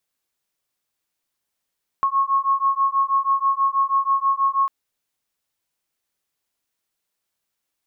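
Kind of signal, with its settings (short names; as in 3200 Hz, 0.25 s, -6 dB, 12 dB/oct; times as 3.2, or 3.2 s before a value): beating tones 1090 Hz, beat 6.2 Hz, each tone -20 dBFS 2.65 s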